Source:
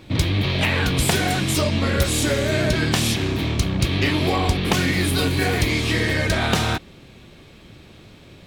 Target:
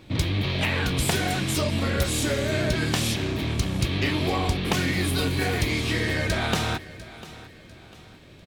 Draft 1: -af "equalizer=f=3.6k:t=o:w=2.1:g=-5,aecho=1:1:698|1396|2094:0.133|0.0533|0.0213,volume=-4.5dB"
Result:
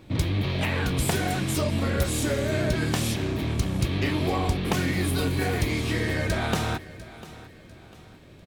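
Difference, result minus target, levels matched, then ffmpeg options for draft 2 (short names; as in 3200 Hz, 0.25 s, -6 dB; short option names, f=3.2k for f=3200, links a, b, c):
4000 Hz band -3.5 dB
-af "aecho=1:1:698|1396|2094:0.133|0.0533|0.0213,volume=-4.5dB"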